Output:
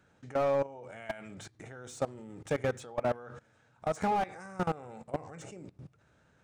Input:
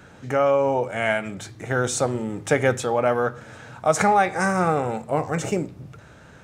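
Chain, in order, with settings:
downsampling to 22,050 Hz
output level in coarse steps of 20 dB
slew-rate limiting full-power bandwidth 87 Hz
level −6.5 dB

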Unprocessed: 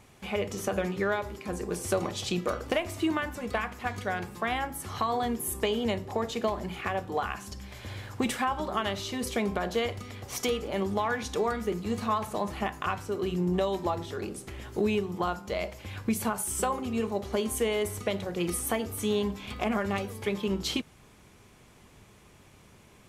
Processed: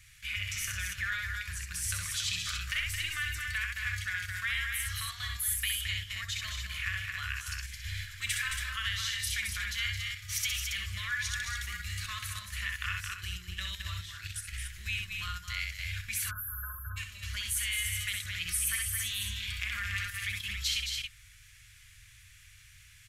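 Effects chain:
elliptic band-stop filter 120–1,700 Hz, stop band 40 dB
parametric band 140 Hz −10 dB 1 octave
loudspeakers that aren't time-aligned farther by 22 metres −5 dB, 75 metres −7 dB, 95 metres −8 dB
in parallel at −1 dB: output level in coarse steps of 22 dB
on the sum: time-frequency box erased 0:16.31–0:16.97, 1,700–11,000 Hz

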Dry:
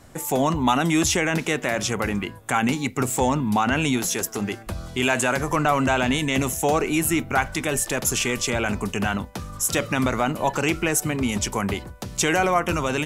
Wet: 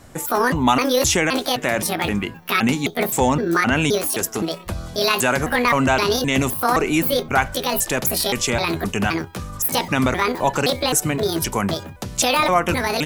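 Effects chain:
pitch shifter gated in a rhythm +8.5 semitones, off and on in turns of 260 ms
level +3.5 dB

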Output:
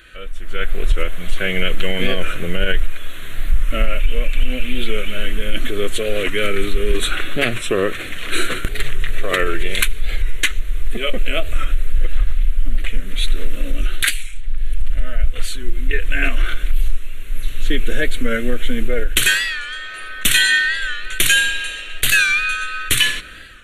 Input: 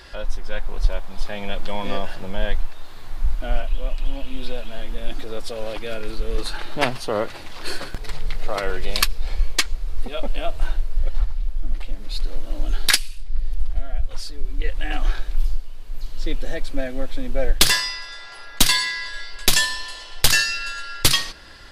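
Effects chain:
brickwall limiter −13.5 dBFS, peak gain reduction 10 dB
tilt shelving filter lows −4 dB, about 890 Hz
phaser with its sweep stopped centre 2,300 Hz, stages 4
automatic gain control gain up to 13 dB
wrong playback speed 48 kHz file played as 44.1 kHz
dynamic equaliser 380 Hz, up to +5 dB, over −40 dBFS, Q 3.5
wow of a warped record 45 rpm, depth 100 cents

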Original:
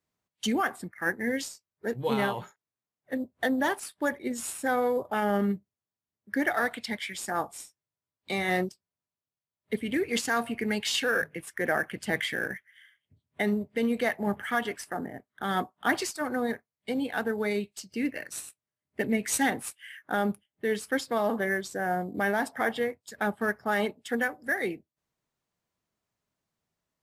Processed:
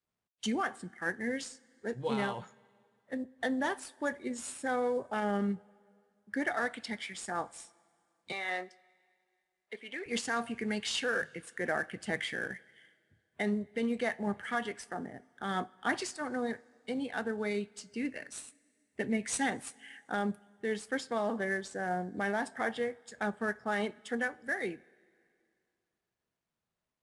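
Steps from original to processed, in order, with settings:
0:08.32–0:10.06: band-pass filter 630–4,700 Hz
on a send at −16 dB: convolution reverb, pre-delay 3 ms
on the sum: level −5.5 dB
IMA ADPCM 88 kbit/s 22,050 Hz

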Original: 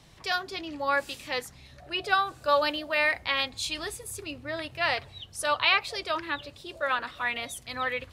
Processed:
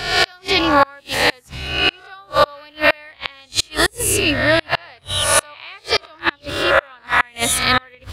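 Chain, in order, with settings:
peak hold with a rise ahead of every peak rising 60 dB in 0.76 s
low-shelf EQ 120 Hz +4.5 dB
gate with flip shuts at −18 dBFS, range −34 dB
boost into a limiter +18.5 dB
level −1 dB

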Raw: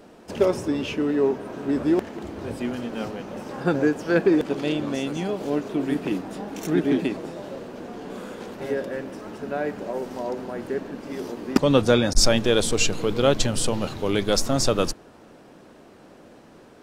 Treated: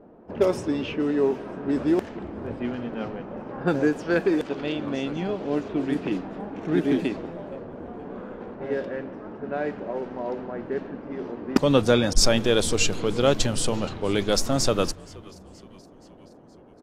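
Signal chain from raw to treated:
0:04.14–0:04.86: low-shelf EQ 390 Hz −5 dB
low-pass that shuts in the quiet parts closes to 850 Hz, open at −17.5 dBFS
echo with shifted repeats 473 ms, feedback 55%, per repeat −99 Hz, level −23 dB
level −1 dB

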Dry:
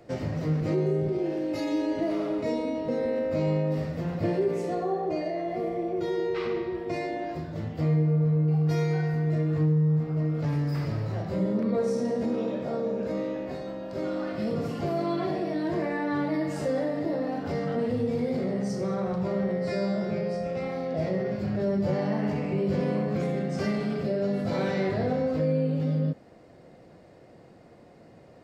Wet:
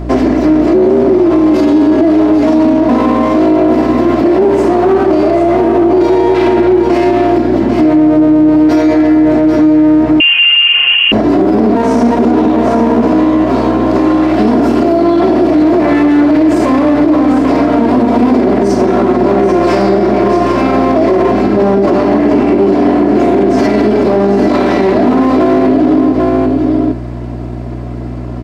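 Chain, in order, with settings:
lower of the sound and its delayed copy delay 3 ms
four-pole ladder high-pass 200 Hz, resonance 40%
spectral tilt −1.5 dB per octave
mains hum 60 Hz, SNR 17 dB
single-tap delay 792 ms −8.5 dB
0:10.20–0:11.12: voice inversion scrambler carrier 3,100 Hz
boost into a limiter +31.5 dB
level −1 dB

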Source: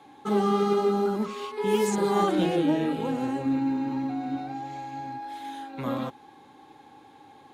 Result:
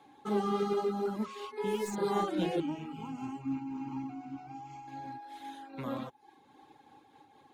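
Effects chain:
stylus tracing distortion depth 0.021 ms
reverb reduction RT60 0.54 s
0:02.60–0:04.88: phaser with its sweep stopped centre 2,600 Hz, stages 8
amplitude modulation by smooth noise, depth 55%
level −3.5 dB

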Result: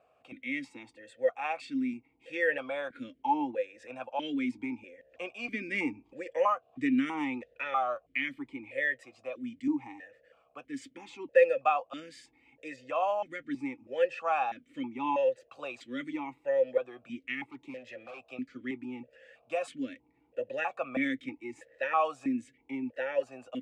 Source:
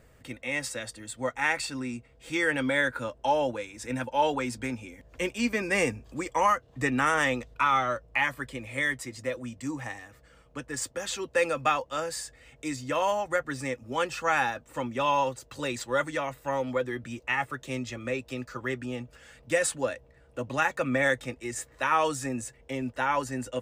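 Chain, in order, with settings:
0:17.43–0:18.28: hard clipping −36 dBFS, distortion −24 dB
formant filter that steps through the vowels 3.1 Hz
level +6 dB

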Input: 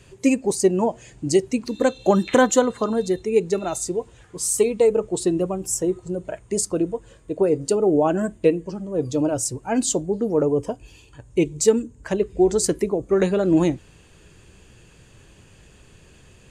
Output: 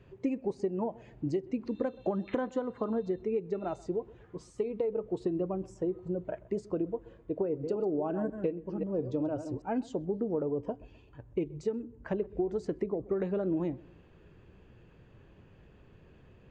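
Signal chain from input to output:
0:07.41–0:09.62: delay that plays each chunk backwards 178 ms, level −11 dB
low-shelf EQ 100 Hz −5.5 dB
downward compressor 10 to 1, threshold −23 dBFS, peak gain reduction 13.5 dB
head-to-tape spacing loss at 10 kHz 41 dB
feedback echo with a low-pass in the loop 128 ms, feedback 42%, low-pass 1,400 Hz, level −21 dB
level −3 dB

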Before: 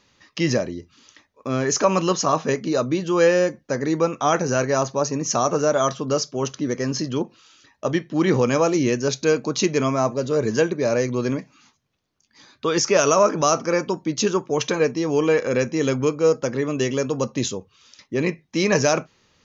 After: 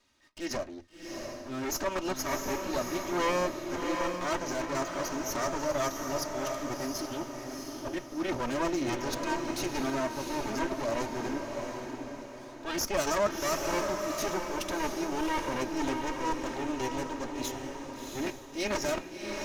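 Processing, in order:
lower of the sound and its delayed copy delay 3.2 ms
transient designer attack −8 dB, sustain −4 dB
feedback delay with all-pass diffusion 694 ms, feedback 42%, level −4 dB
level −7.5 dB

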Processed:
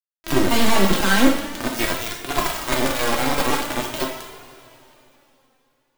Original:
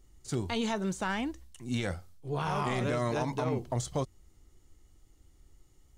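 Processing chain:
stylus tracing distortion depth 0.081 ms
linear-prediction vocoder at 8 kHz pitch kept
high-pass filter 70 Hz 6 dB per octave, from 0:01.67 400 Hz
downward compressor 10 to 1, threshold −37 dBFS, peak gain reduction 10.5 dB
delay with a high-pass on its return 242 ms, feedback 33%, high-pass 2,300 Hz, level −5 dB
fuzz pedal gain 49 dB, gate −56 dBFS
log-companded quantiser 2 bits
coupled-rooms reverb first 0.67 s, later 3.2 s, from −15 dB, DRR −1 dB
flanger 0.45 Hz, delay 2.8 ms, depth 1 ms, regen +37%
level −8.5 dB

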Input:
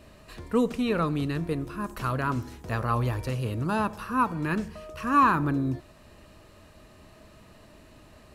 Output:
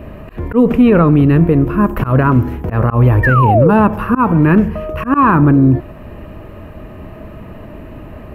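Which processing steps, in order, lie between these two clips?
volume swells 144 ms
flat-topped bell 6,000 Hz −16 dB
sound drawn into the spectrogram fall, 0:03.23–0:03.71, 420–1,900 Hz −27 dBFS
tilt shelving filter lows +5 dB
boost into a limiter +18 dB
level −1 dB

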